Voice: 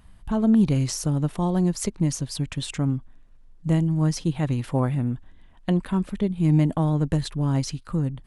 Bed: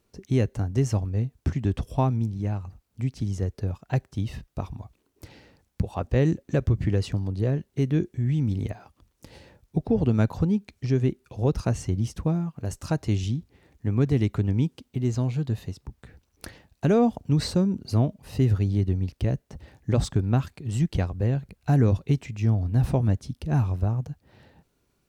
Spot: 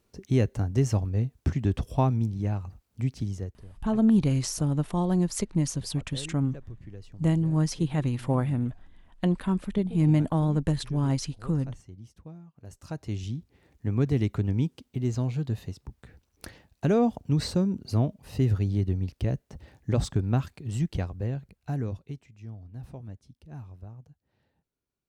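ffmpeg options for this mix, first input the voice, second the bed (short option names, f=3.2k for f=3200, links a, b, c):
-filter_complex "[0:a]adelay=3550,volume=-2.5dB[a];[1:a]volume=17dB,afade=t=out:st=3.12:d=0.52:silence=0.105925,afade=t=in:st=12.5:d=1.33:silence=0.133352,afade=t=out:st=20.55:d=1.72:silence=0.149624[b];[a][b]amix=inputs=2:normalize=0"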